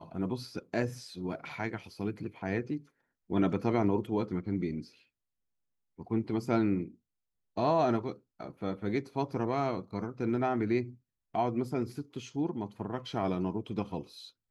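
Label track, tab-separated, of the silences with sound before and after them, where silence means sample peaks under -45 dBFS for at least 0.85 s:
4.870000	5.990000	silence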